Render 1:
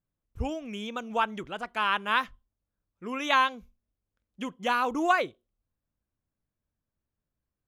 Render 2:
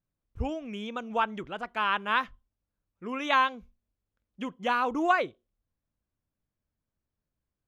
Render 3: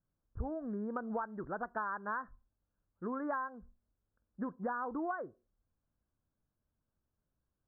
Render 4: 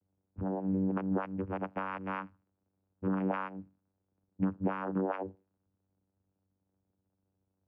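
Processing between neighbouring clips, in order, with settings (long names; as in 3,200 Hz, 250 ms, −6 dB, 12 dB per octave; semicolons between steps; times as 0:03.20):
high-shelf EQ 5,900 Hz −12 dB
Butterworth low-pass 1,700 Hz 96 dB per octave; downward compressor 12 to 1, threshold −35 dBFS, peak gain reduction 17.5 dB; level +1 dB
surface crackle 380 per second −63 dBFS; low-pass that shuts in the quiet parts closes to 710 Hz, open at −33 dBFS; channel vocoder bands 8, saw 95.5 Hz; level +6 dB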